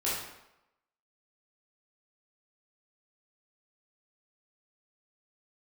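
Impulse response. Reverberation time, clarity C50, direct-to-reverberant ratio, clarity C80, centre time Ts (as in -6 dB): 0.90 s, 0.5 dB, -8.5 dB, 4.0 dB, 66 ms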